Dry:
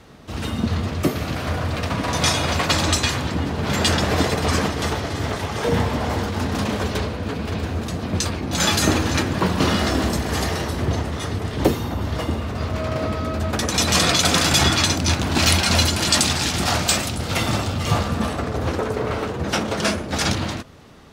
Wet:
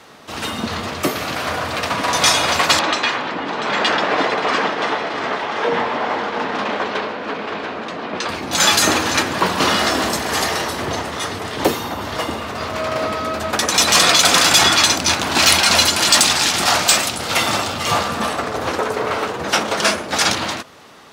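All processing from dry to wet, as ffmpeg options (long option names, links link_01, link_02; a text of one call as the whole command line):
ffmpeg -i in.wav -filter_complex "[0:a]asettb=1/sr,asplit=3[link_01][link_02][link_03];[link_01]atrim=end=2.794[link_04];[link_02]atrim=start=2.79:end=8.29,asetpts=PTS-STARTPTS,afade=type=in:duration=0.004:curve=qsin,afade=type=out:start_time=5.496:duration=0.004:curve=qsin,highpass=210,lowpass=2900,aecho=1:1:691:0.299,atrim=end_sample=242550[link_05];[link_03]atrim=start=8.286[link_06];[link_04][link_05]acrossfade=duration=0.004:curve1=hsin:curve2=qsin[link_07];[link_07][link_06]acrossfade=duration=0.004:curve1=qsin:curve2=hsin,highpass=frequency=660:poles=1,equalizer=frequency=1000:width=1.5:gain=2,acontrast=85" out.wav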